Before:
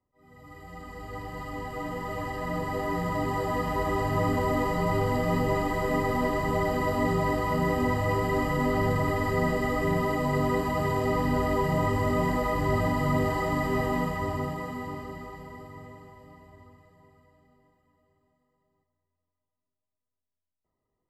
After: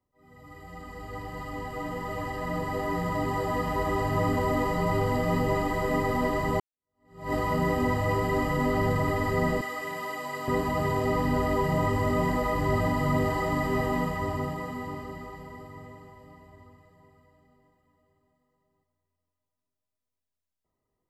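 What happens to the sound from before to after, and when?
6.6–7.33 fade in exponential
9.61–10.48 HPF 1400 Hz 6 dB/oct

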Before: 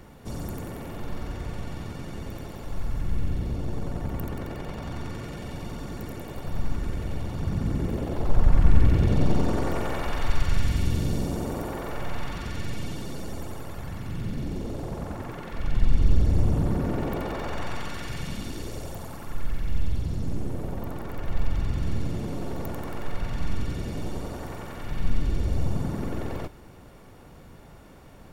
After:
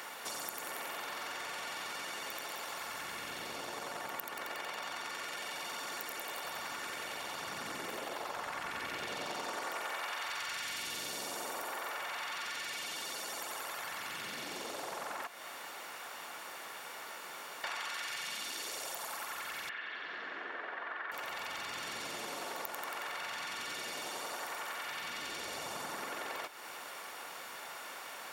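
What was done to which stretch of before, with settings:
15.27–17.64 room tone
19.69–21.12 speaker cabinet 400–3000 Hz, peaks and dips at 550 Hz -6 dB, 850 Hz -6 dB, 1700 Hz +9 dB, 2500 Hz -3 dB
whole clip: HPF 1100 Hz 12 dB/oct; compressor 4:1, threshold -53 dBFS; gain +13.5 dB

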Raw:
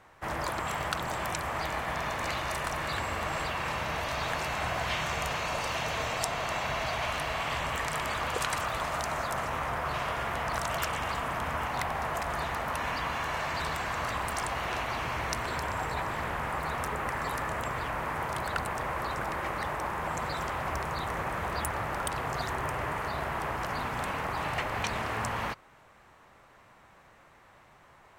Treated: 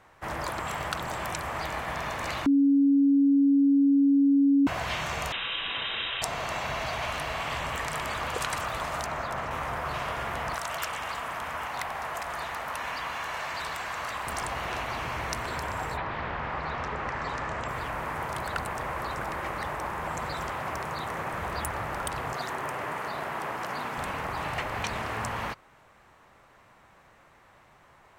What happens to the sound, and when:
2.46–4.67 bleep 279 Hz -17.5 dBFS
5.32–6.22 inverted band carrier 3800 Hz
9.06–9.51 bell 11000 Hz -10.5 dB 1.5 oct
10.54–14.27 low shelf 390 Hz -10.5 dB
15.96–17.67 LPF 4100 Hz -> 7200 Hz 24 dB/oct
20.53–21.33 HPF 100 Hz
22.33–23.98 HPF 170 Hz

